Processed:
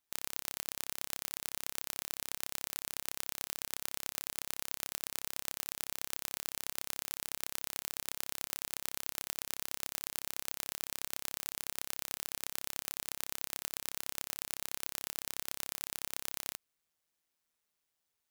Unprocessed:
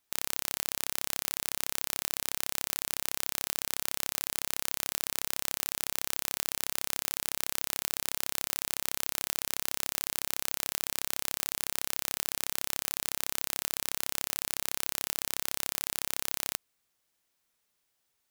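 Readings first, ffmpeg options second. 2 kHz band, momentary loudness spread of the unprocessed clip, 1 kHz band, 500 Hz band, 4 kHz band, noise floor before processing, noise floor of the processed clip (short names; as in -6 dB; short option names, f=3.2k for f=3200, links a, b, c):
-7.0 dB, 0 LU, -7.0 dB, -7.0 dB, -7.0 dB, -78 dBFS, -85 dBFS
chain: -af "tremolo=f=160:d=0.519,volume=-4.5dB"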